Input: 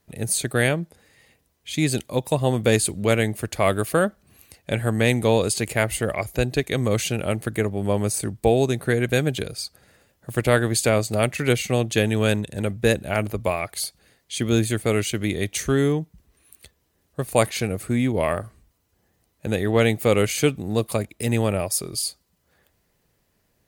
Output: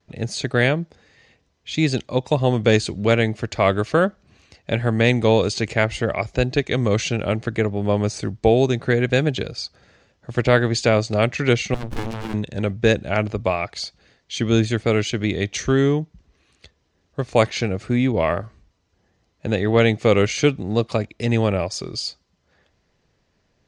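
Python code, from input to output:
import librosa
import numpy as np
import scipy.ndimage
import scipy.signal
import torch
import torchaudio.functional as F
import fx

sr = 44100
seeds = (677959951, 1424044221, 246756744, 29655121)

y = fx.vibrato(x, sr, rate_hz=0.68, depth_cents=30.0)
y = scipy.signal.sosfilt(scipy.signal.butter(6, 6400.0, 'lowpass', fs=sr, output='sos'), y)
y = fx.running_max(y, sr, window=65, at=(11.74, 12.34))
y = F.gain(torch.from_numpy(y), 2.5).numpy()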